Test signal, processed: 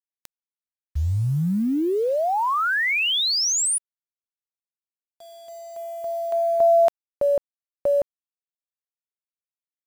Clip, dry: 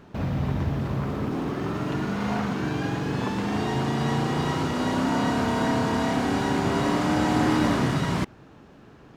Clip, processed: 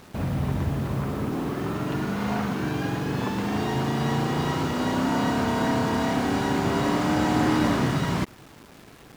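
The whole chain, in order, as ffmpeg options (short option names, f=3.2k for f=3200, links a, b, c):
-af "acrusher=bits=7:mix=0:aa=0.000001"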